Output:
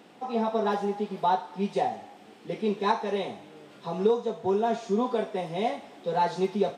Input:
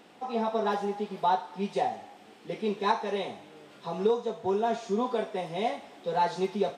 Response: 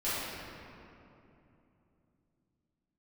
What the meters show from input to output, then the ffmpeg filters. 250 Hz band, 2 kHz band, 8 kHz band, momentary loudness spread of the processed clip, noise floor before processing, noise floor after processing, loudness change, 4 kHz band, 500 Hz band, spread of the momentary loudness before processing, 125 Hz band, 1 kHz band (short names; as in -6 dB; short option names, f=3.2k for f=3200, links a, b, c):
+3.5 dB, 0.0 dB, n/a, 10 LU, -54 dBFS, -52 dBFS, +1.5 dB, 0.0 dB, +2.0 dB, 10 LU, +3.5 dB, +1.0 dB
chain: -af "highpass=89,lowshelf=f=420:g=4.5"